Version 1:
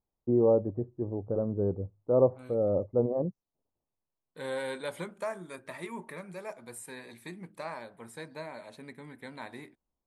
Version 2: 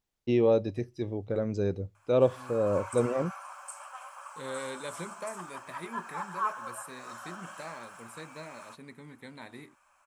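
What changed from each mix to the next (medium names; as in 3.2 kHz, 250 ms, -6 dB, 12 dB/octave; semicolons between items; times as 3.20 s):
first voice: remove steep low-pass 1.1 kHz 36 dB/octave; second voice: add peaking EQ 890 Hz -5.5 dB 2.1 oct; background: unmuted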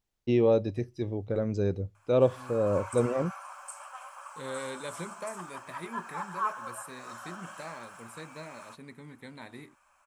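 master: add bass shelf 120 Hz +4.5 dB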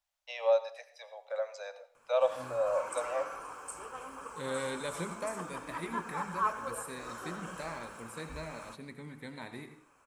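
first voice: add steep high-pass 540 Hz 96 dB/octave; background: remove brick-wall FIR high-pass 540 Hz; reverb: on, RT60 0.50 s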